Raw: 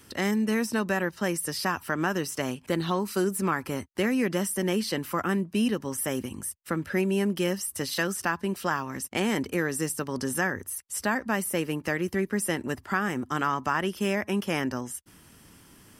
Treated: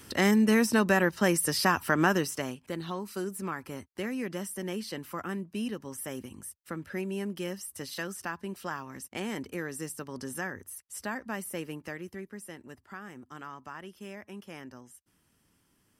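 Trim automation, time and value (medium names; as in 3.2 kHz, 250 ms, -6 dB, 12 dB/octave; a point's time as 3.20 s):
2.11 s +3 dB
2.63 s -8.5 dB
11.66 s -8.5 dB
12.45 s -16.5 dB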